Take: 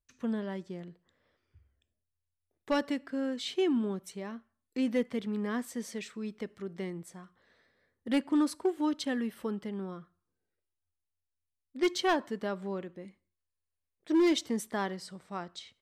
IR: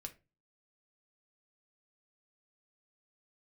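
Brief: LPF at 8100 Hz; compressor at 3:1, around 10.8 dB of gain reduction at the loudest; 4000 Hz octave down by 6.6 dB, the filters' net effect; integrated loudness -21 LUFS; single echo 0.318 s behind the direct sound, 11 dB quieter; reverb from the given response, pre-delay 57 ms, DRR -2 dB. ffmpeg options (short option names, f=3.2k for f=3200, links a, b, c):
-filter_complex "[0:a]lowpass=8.1k,equalizer=f=4k:t=o:g=-8.5,acompressor=threshold=-38dB:ratio=3,aecho=1:1:318:0.282,asplit=2[a][b];[1:a]atrim=start_sample=2205,adelay=57[c];[b][c]afir=irnorm=-1:irlink=0,volume=6.5dB[d];[a][d]amix=inputs=2:normalize=0,volume=15.5dB"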